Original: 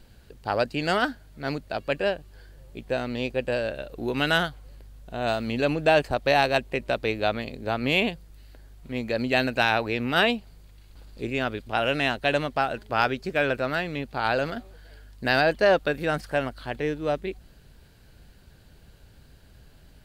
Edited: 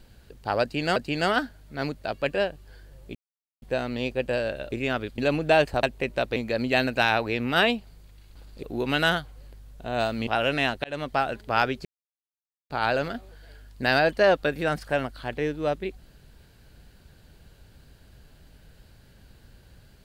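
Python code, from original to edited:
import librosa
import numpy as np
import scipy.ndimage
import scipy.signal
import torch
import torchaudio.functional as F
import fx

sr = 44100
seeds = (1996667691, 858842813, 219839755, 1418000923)

y = fx.edit(x, sr, fx.repeat(start_s=0.62, length_s=0.34, count=2),
    fx.insert_silence(at_s=2.81, length_s=0.47),
    fx.swap(start_s=3.91, length_s=1.64, other_s=11.23, other_length_s=0.46),
    fx.cut(start_s=6.2, length_s=0.35),
    fx.cut(start_s=7.08, length_s=1.88),
    fx.fade_in_span(start_s=12.26, length_s=0.26),
    fx.silence(start_s=13.27, length_s=0.85), tone=tone)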